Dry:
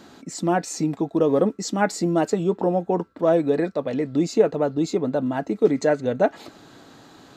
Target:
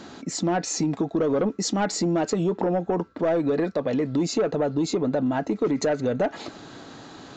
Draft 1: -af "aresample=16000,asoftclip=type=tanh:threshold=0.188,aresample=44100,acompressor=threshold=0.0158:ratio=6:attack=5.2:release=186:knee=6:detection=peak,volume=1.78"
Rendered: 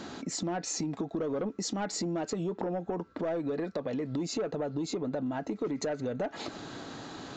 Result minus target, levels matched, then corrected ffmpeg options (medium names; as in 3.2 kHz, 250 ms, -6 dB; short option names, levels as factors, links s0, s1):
compression: peak gain reduction +9.5 dB
-af "aresample=16000,asoftclip=type=tanh:threshold=0.188,aresample=44100,acompressor=threshold=0.0596:ratio=6:attack=5.2:release=186:knee=6:detection=peak,volume=1.78"